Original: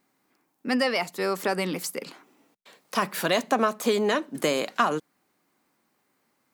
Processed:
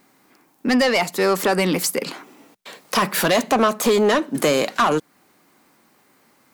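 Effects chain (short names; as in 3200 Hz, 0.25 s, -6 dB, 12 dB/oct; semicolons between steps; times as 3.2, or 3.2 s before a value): in parallel at -2 dB: compressor, threshold -35 dBFS, peak gain reduction 17 dB; on the sum: soft clip -19.5 dBFS, distortion -11 dB; gain +8.5 dB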